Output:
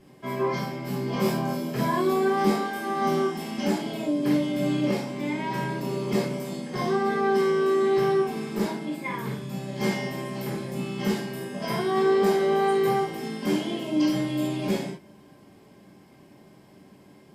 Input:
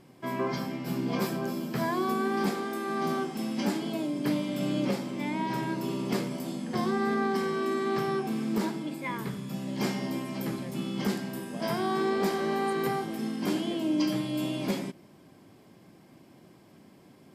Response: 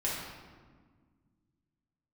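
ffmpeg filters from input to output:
-filter_complex "[0:a]asettb=1/sr,asplit=3[a][b][c];[a]atrim=end=1.224[d];[b]atrim=start=1.22:end=3.58,asetpts=PTS-STARTPTS,afade=t=in:d=0.004:c=qsin,afade=t=out:st=2.356:d=0.004:c=qsin,asplit=2[e][f];[f]adelay=24,volume=-5dB[g];[e][g]amix=inputs=2:normalize=0,atrim=end_sample=104076[h];[c]atrim=start=3.576[i];[d][h]acrossfade=d=0.004:c1=hsin:c2=qsin[j];[j][i]acrossfade=d=0.004:c1=qsin:c2=hsin[k];[1:a]atrim=start_sample=2205,atrim=end_sample=3528[l];[k][l]afir=irnorm=-1:irlink=0,volume=-1.5dB"

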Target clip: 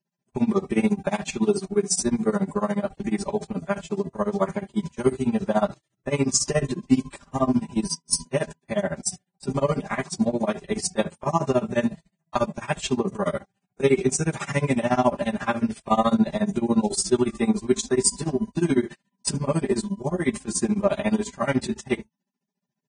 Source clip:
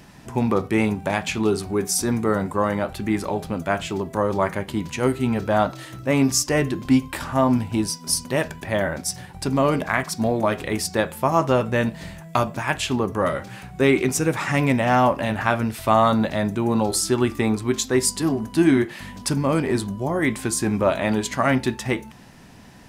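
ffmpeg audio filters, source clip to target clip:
-af "equalizer=f=1.8k:t=o:w=2.6:g=-6.5,agate=range=-35dB:threshold=-30dB:ratio=16:detection=peak,aecho=1:1:5:0.99,tremolo=f=14:d=0.95" -ar 22050 -c:a libvorbis -b:a 16k

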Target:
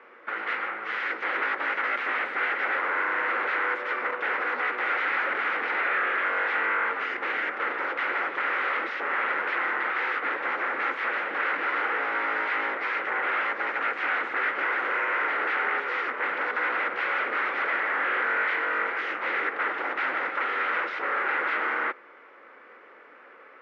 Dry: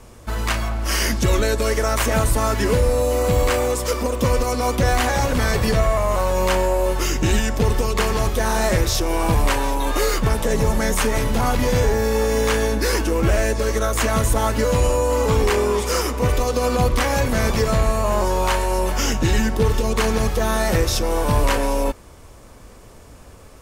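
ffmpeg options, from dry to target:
-af "aeval=exprs='0.0794*(abs(mod(val(0)/0.0794+3,4)-2)-1)':c=same,highpass=f=390:w=0.5412,highpass=f=390:w=1.3066,equalizer=f=410:t=q:w=4:g=-4,equalizer=f=660:t=q:w=4:g=-9,equalizer=f=970:t=q:w=4:g=-4,equalizer=f=1.4k:t=q:w=4:g=8,equalizer=f=2k:t=q:w=4:g=8,lowpass=f=2.4k:w=0.5412,lowpass=f=2.4k:w=1.3066"

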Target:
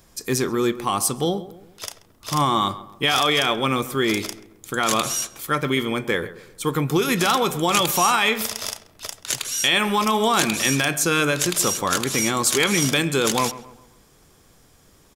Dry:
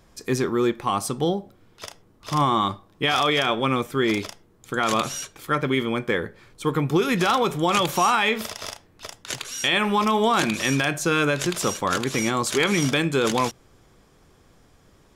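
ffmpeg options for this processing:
-filter_complex "[0:a]crystalizer=i=2:c=0,asplit=2[a][b];[b]adelay=133,lowpass=f=1.9k:p=1,volume=-15dB,asplit=2[c][d];[d]adelay=133,lowpass=f=1.9k:p=1,volume=0.42,asplit=2[e][f];[f]adelay=133,lowpass=f=1.9k:p=1,volume=0.42,asplit=2[g][h];[h]adelay=133,lowpass=f=1.9k:p=1,volume=0.42[i];[c][e][g][i]amix=inputs=4:normalize=0[j];[a][j]amix=inputs=2:normalize=0"

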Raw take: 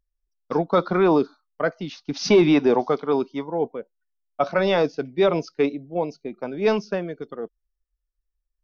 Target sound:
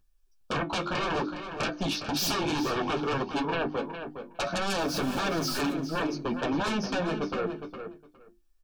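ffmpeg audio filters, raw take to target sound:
-filter_complex "[0:a]asettb=1/sr,asplit=3[a][b][c];[a]atrim=end=4.784[d];[b]atrim=start=4.78:end=5.73,asetpts=PTS-STARTPTS,afade=t=in:d=0.004:c=qsin,afade=t=out:st=0.946:d=0.004:c=qsin,aeval=exprs='val(0)+0.5*0.0178*sgn(val(0))':c=same[e];[c]atrim=start=5.726[f];[d][e]acrossfade=d=0.004:c1=hsin:c2=qsin[g];[g][f]acrossfade=d=0.004:c1=qsin:c2=hsin,equalizer=f=470:w=4.5:g=-5.5,bandreject=f=50:t=h:w=6,bandreject=f=100:t=h:w=6,bandreject=f=150:t=h:w=6,bandreject=f=200:t=h:w=6,bandreject=f=250:t=h:w=6,bandreject=f=300:t=h:w=6,bandreject=f=350:t=h:w=6,acompressor=threshold=-29dB:ratio=6,flanger=delay=9.7:depth=3.5:regen=-23:speed=1.5:shape=triangular,aeval=exprs='0.0841*sin(PI/2*5.62*val(0)/0.0841)':c=same,flanger=delay=9.1:depth=5.6:regen=-51:speed=0.64:shape=sinusoidal,asuperstop=centerf=2000:order=20:qfactor=6.7,asplit=2[h][i];[i]adelay=411,lowpass=f=4.3k:p=1,volume=-8.5dB,asplit=2[j][k];[k]adelay=411,lowpass=f=4.3k:p=1,volume=0.16[l];[h][j][l]amix=inputs=3:normalize=0"

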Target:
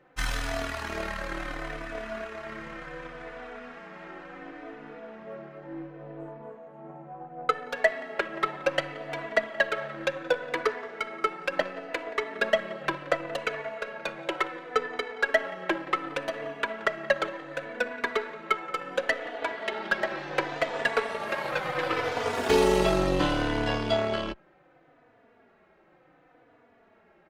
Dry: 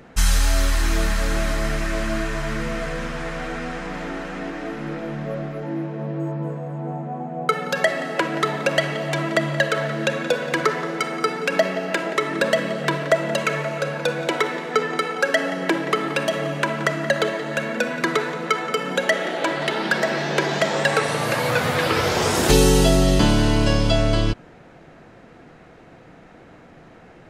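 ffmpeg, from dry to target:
-filter_complex "[0:a]aeval=exprs='0.75*(cos(1*acos(clip(val(0)/0.75,-1,1)))-cos(1*PI/2))+0.0266*(cos(6*acos(clip(val(0)/0.75,-1,1)))-cos(6*PI/2))+0.0668*(cos(7*acos(clip(val(0)/0.75,-1,1)))-cos(7*PI/2))':c=same,bass=f=250:g=-11,treble=f=4k:g=-14,asplit=2[a][b];[b]adelay=3.4,afreqshift=-0.69[c];[a][c]amix=inputs=2:normalize=1"

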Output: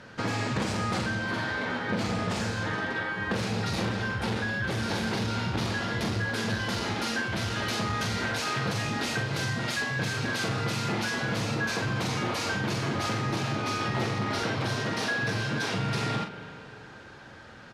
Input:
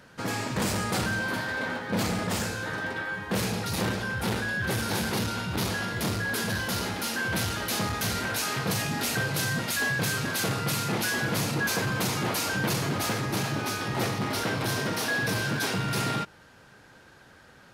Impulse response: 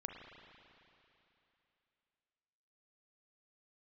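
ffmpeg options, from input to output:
-filter_complex "[0:a]asplit=2[a][b];[1:a]atrim=start_sample=2205,adelay=9[c];[b][c]afir=irnorm=-1:irlink=0,volume=-9.5dB[d];[a][d]amix=inputs=2:normalize=0,acompressor=threshold=-31dB:ratio=6,lowpass=5.7k,asplit=2[e][f];[f]adelay=45,volume=-7dB[g];[e][g]amix=inputs=2:normalize=0,volume=4.5dB"

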